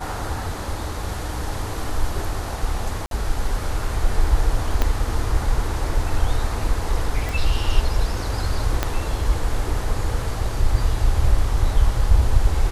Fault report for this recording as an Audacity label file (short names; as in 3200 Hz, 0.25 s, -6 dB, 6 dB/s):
3.060000	3.110000	gap 52 ms
4.820000	4.820000	pop -6 dBFS
7.290000	7.290000	pop
8.830000	8.830000	pop -5 dBFS